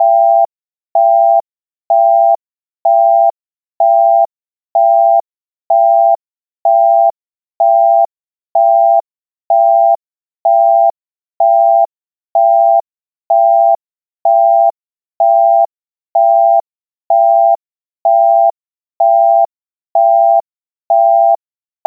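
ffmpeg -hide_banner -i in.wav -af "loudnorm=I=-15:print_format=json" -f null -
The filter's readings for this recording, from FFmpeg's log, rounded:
"input_i" : "-11.2",
"input_tp" : "-1.8",
"input_lra" : "0.5",
"input_thresh" : "-21.4",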